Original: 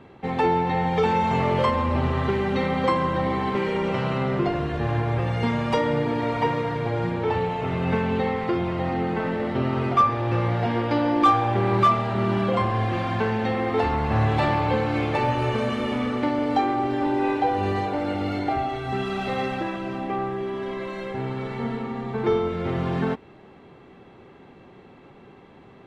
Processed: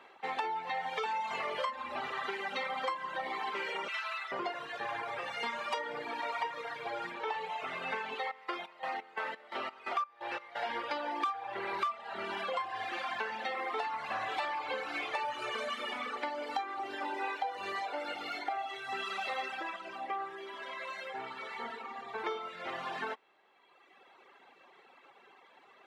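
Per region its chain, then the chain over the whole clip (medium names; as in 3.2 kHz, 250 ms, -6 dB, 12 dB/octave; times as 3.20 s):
3.88–4.32 s: high-pass 1.2 kHz + comb 4.6 ms, depth 66%
8.14–10.69 s: bass shelf 170 Hz -11.5 dB + square tremolo 2.9 Hz, depth 65%
whole clip: reverb removal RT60 1.7 s; high-pass 840 Hz 12 dB/octave; compression 6:1, threshold -32 dBFS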